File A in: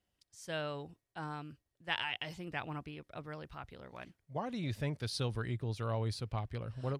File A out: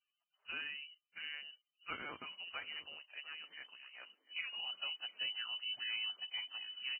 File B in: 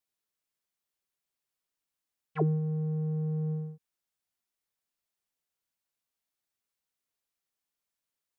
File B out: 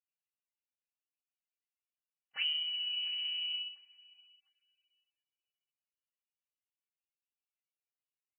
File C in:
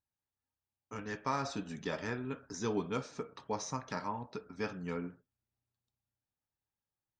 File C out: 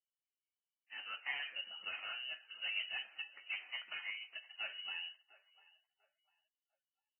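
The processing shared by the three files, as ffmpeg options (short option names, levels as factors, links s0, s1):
-filter_complex "[0:a]highpass=f=43:p=1,aeval=exprs='clip(val(0),-1,0.0282)':c=same,flanger=delay=5.2:depth=1.6:regen=-47:speed=0.42:shape=sinusoidal,lowpass=f=2600:t=q:w=0.5098,lowpass=f=2600:t=q:w=0.6013,lowpass=f=2600:t=q:w=0.9,lowpass=f=2600:t=q:w=2.563,afreqshift=-3100,asplit=2[s0][s1];[s1]adelay=698,lowpass=f=940:p=1,volume=0.178,asplit=2[s2][s3];[s3]adelay=698,lowpass=f=940:p=1,volume=0.44,asplit=2[s4][s5];[s5]adelay=698,lowpass=f=940:p=1,volume=0.44,asplit=2[s6][s7];[s7]adelay=698,lowpass=f=940:p=1,volume=0.44[s8];[s0][s2][s4][s6][s8]amix=inputs=5:normalize=0,volume=0.841" -ar 16000 -c:a libvorbis -b:a 16k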